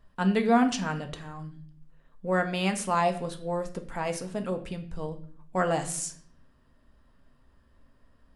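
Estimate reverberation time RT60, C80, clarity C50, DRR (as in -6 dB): 0.55 s, 16.0 dB, 13.0 dB, 6.0 dB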